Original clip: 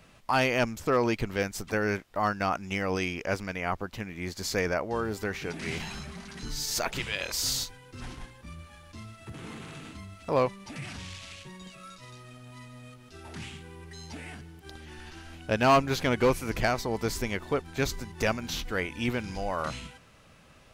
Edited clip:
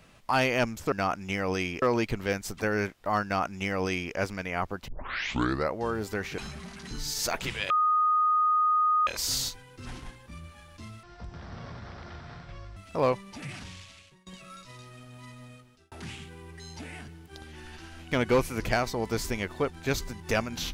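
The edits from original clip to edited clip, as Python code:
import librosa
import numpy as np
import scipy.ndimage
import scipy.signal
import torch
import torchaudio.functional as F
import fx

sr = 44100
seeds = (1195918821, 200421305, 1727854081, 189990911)

y = fx.edit(x, sr, fx.duplicate(start_s=2.34, length_s=0.9, to_s=0.92),
    fx.tape_start(start_s=3.98, length_s=0.87),
    fx.cut(start_s=5.48, length_s=0.42),
    fx.insert_tone(at_s=7.22, length_s=1.37, hz=1240.0, db=-20.5),
    fx.speed_span(start_s=9.18, length_s=0.92, speed=0.53),
    fx.fade_out_to(start_s=10.79, length_s=0.81, floor_db=-21.5),
    fx.fade_out_span(start_s=12.78, length_s=0.47),
    fx.cut(start_s=15.45, length_s=0.58), tone=tone)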